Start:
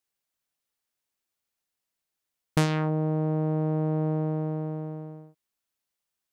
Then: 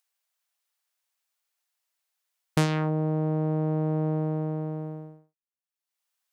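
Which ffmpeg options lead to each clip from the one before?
-filter_complex "[0:a]agate=range=-33dB:threshold=-34dB:ratio=3:detection=peak,acrossover=split=530[a][b];[b]acompressor=mode=upward:threshold=-53dB:ratio=2.5[c];[a][c]amix=inputs=2:normalize=0"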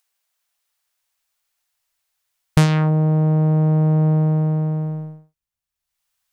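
-af "asubboost=boost=10.5:cutoff=97,volume=6.5dB"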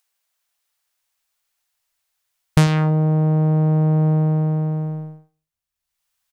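-af "aecho=1:1:99|198:0.0891|0.0241"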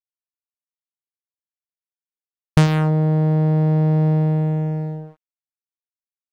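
-filter_complex "[0:a]asplit=2[a][b];[b]adynamicsmooth=sensitivity=5.5:basefreq=800,volume=2dB[c];[a][c]amix=inputs=2:normalize=0,aeval=exprs='sgn(val(0))*max(abs(val(0))-0.0316,0)':c=same,volume=-6.5dB"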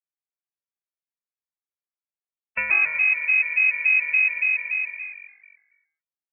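-filter_complex "[0:a]asplit=8[a][b][c][d][e][f][g][h];[b]adelay=123,afreqshift=46,volume=-7.5dB[i];[c]adelay=246,afreqshift=92,volume=-12.5dB[j];[d]adelay=369,afreqshift=138,volume=-17.6dB[k];[e]adelay=492,afreqshift=184,volume=-22.6dB[l];[f]adelay=615,afreqshift=230,volume=-27.6dB[m];[g]adelay=738,afreqshift=276,volume=-32.7dB[n];[h]adelay=861,afreqshift=322,volume=-37.7dB[o];[a][i][j][k][l][m][n][o]amix=inputs=8:normalize=0,lowpass=f=2.3k:t=q:w=0.5098,lowpass=f=2.3k:t=q:w=0.6013,lowpass=f=2.3k:t=q:w=0.9,lowpass=f=2.3k:t=q:w=2.563,afreqshift=-2700,afftfilt=real='re*gt(sin(2*PI*3.5*pts/sr)*(1-2*mod(floor(b*sr/1024/220),2)),0)':imag='im*gt(sin(2*PI*3.5*pts/sr)*(1-2*mod(floor(b*sr/1024/220),2)),0)':win_size=1024:overlap=0.75,volume=-2dB"

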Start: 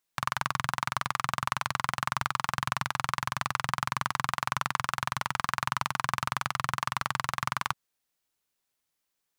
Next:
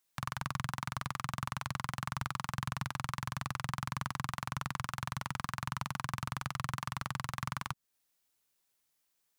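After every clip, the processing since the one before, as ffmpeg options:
-filter_complex "[0:a]highshelf=f=5.5k:g=4.5,acrossover=split=340[a][b];[b]alimiter=limit=-18.5dB:level=0:latency=1:release=284[c];[a][c]amix=inputs=2:normalize=0"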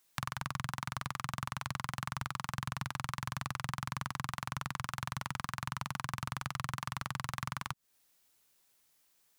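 -af "acompressor=threshold=-41dB:ratio=6,volume=7.5dB"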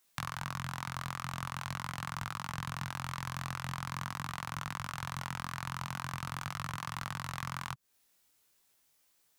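-af "flanger=delay=19.5:depth=3.8:speed=0.44,volume=3dB"

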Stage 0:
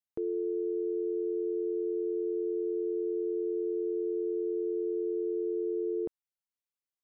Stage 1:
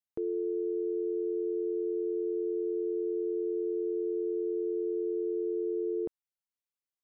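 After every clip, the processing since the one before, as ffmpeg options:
-af anull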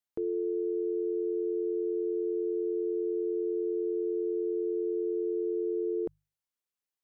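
-af "bandreject=f=50:t=h:w=6,bandreject=f=100:t=h:w=6,bandreject=f=150:t=h:w=6,volume=1dB"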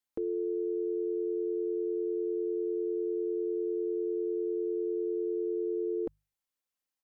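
-af "aecho=1:1:3.8:0.46"

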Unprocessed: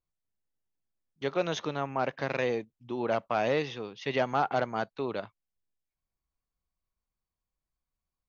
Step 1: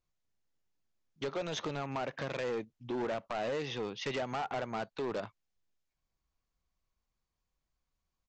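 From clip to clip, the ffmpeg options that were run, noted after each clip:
-af "acompressor=threshold=-32dB:ratio=6,aresample=16000,asoftclip=type=hard:threshold=-35dB,aresample=44100,volume=4dB"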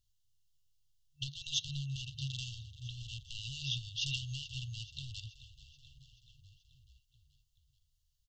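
-filter_complex "[0:a]asplit=7[a][b][c][d][e][f][g];[b]adelay=431,afreqshift=-32,volume=-16dB[h];[c]adelay=862,afreqshift=-64,volume=-20dB[i];[d]adelay=1293,afreqshift=-96,volume=-24dB[j];[e]adelay=1724,afreqshift=-128,volume=-28dB[k];[f]adelay=2155,afreqshift=-160,volume=-32.1dB[l];[g]adelay=2586,afreqshift=-192,volume=-36.1dB[m];[a][h][i][j][k][l][m]amix=inputs=7:normalize=0,afftfilt=real='re*(1-between(b*sr/4096,140,2700))':imag='im*(1-between(b*sr/4096,140,2700))':win_size=4096:overlap=0.75,volume=7dB"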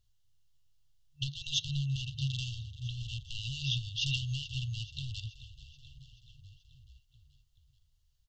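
-af "highshelf=f=4.1k:g=-8.5,volume=6.5dB"

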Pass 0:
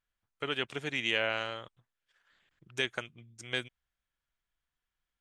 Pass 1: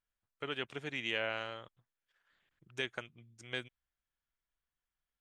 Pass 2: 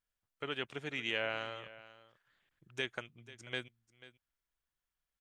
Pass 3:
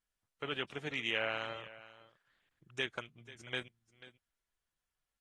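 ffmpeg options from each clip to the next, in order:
-af "highshelf=f=4.5k:g=-6,volume=-4.5dB"
-af "aecho=1:1:490:0.133"
-ar 44100 -c:a aac -b:a 32k

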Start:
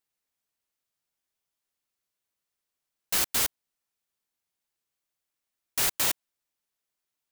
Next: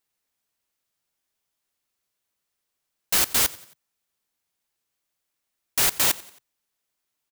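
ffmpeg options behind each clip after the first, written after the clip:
-filter_complex "[0:a]asplit=4[a][b][c][d];[b]adelay=90,afreqshift=35,volume=-21dB[e];[c]adelay=180,afreqshift=70,volume=-27.6dB[f];[d]adelay=270,afreqshift=105,volume=-34.1dB[g];[a][e][f][g]amix=inputs=4:normalize=0,volume=5dB"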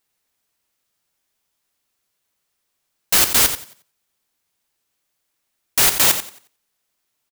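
-af "aecho=1:1:88|176:0.299|0.0478,volume=6dB"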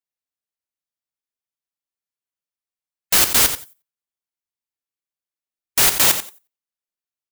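-af "afftdn=nr=21:nf=-43"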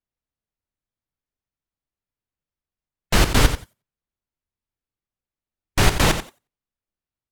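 -af "aemphasis=mode=reproduction:type=riaa,volume=2.5dB"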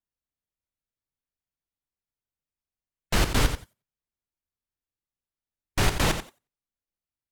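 -af "asoftclip=type=tanh:threshold=-4dB,volume=-5.5dB"

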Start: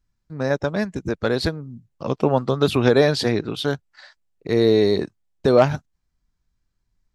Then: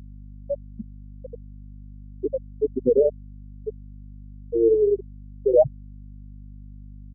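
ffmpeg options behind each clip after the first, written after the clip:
-filter_complex "[0:a]asplit=2[a][b];[b]adelay=61,lowpass=f=4.9k:p=1,volume=-13dB,asplit=2[c][d];[d]adelay=61,lowpass=f=4.9k:p=1,volume=0.26,asplit=2[e][f];[f]adelay=61,lowpass=f=4.9k:p=1,volume=0.26[g];[a][c][e][g]amix=inputs=4:normalize=0,afftfilt=real='re*gte(hypot(re,im),1.12)':imag='im*gte(hypot(re,im),1.12)':win_size=1024:overlap=0.75,aeval=exprs='val(0)+0.01*(sin(2*PI*50*n/s)+sin(2*PI*2*50*n/s)/2+sin(2*PI*3*50*n/s)/3+sin(2*PI*4*50*n/s)/4+sin(2*PI*5*50*n/s)/5)':c=same"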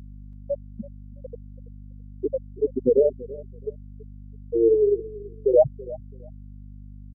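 -af "aecho=1:1:331|662:0.112|0.0213"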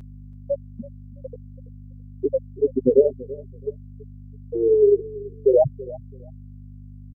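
-af "aecho=1:1:7.5:0.51,volume=1.5dB"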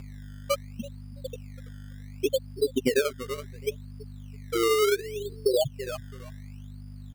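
-af "aemphasis=mode=production:type=75fm,acompressor=threshold=-21dB:ratio=5,acrusher=samples=18:mix=1:aa=0.000001:lfo=1:lforange=18:lforate=0.69"

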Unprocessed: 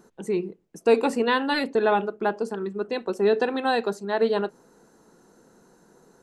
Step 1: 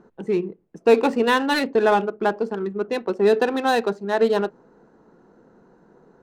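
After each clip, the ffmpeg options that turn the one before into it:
-af "adynamicsmooth=sensitivity=7:basefreq=2.1k,volume=3.5dB"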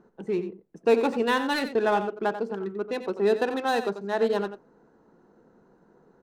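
-af "aecho=1:1:90:0.282,volume=-5.5dB"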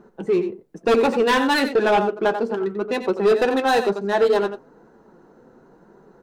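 -af "equalizer=f=170:t=o:w=0.77:g=-2.5,flanger=delay=5:depth=3:regen=-43:speed=1:shape=sinusoidal,aeval=exprs='0.224*sin(PI/2*2.24*val(0)/0.224)':c=same,volume=1.5dB"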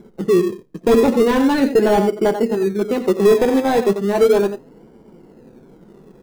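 -filter_complex "[0:a]tiltshelf=f=650:g=7.5,asplit=2[a][b];[b]acrusher=samples=24:mix=1:aa=0.000001:lfo=1:lforange=14.4:lforate=0.35,volume=-10dB[c];[a][c]amix=inputs=2:normalize=0"

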